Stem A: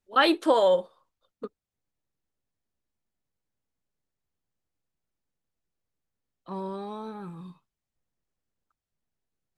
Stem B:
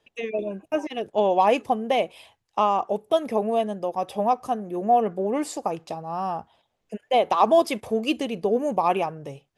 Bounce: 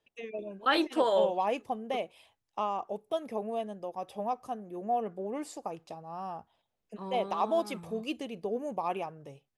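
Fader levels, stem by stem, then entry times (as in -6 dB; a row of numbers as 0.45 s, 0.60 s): -5.5 dB, -11.0 dB; 0.50 s, 0.00 s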